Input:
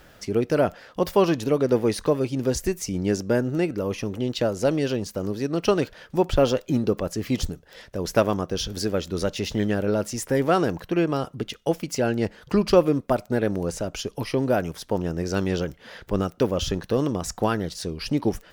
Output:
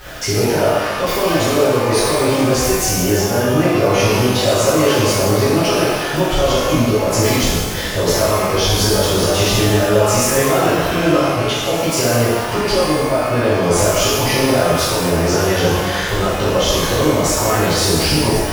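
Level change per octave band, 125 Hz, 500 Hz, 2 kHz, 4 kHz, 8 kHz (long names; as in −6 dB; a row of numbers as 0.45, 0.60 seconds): +10.0, +8.5, +14.0, +15.5, +17.0 decibels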